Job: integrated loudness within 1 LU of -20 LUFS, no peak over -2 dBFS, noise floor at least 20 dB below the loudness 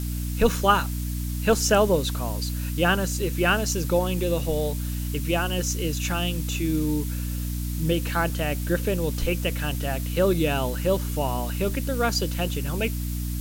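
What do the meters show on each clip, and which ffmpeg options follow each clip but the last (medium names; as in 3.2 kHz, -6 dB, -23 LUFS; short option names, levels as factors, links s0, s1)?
hum 60 Hz; highest harmonic 300 Hz; hum level -26 dBFS; noise floor -29 dBFS; noise floor target -45 dBFS; loudness -25.0 LUFS; peak level -5.0 dBFS; loudness target -20.0 LUFS
-> -af "bandreject=f=60:t=h:w=6,bandreject=f=120:t=h:w=6,bandreject=f=180:t=h:w=6,bandreject=f=240:t=h:w=6,bandreject=f=300:t=h:w=6"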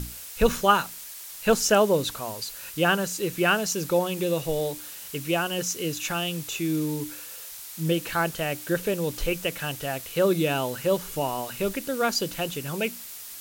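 hum not found; noise floor -41 dBFS; noise floor target -46 dBFS
-> -af "afftdn=nr=6:nf=-41"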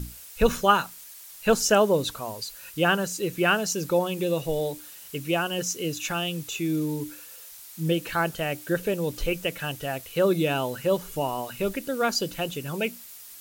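noise floor -45 dBFS; noise floor target -47 dBFS
-> -af "afftdn=nr=6:nf=-45"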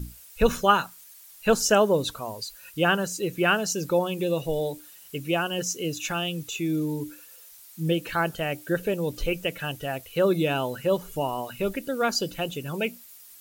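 noise floor -49 dBFS; loudness -26.5 LUFS; peak level -5.5 dBFS; loudness target -20.0 LUFS
-> -af "volume=2.11,alimiter=limit=0.794:level=0:latency=1"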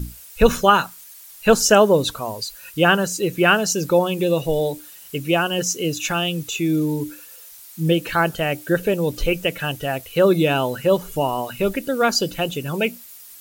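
loudness -20.0 LUFS; peak level -2.0 dBFS; noise floor -43 dBFS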